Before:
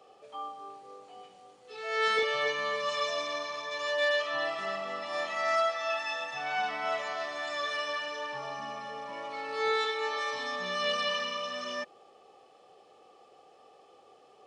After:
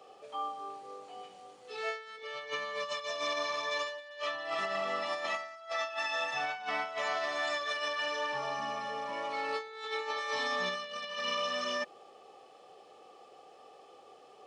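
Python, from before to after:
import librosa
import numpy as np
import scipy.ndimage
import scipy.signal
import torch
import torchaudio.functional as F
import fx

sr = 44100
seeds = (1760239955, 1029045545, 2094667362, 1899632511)

y = fx.low_shelf(x, sr, hz=190.0, db=-4.5)
y = fx.over_compress(y, sr, threshold_db=-35.0, ratio=-0.5)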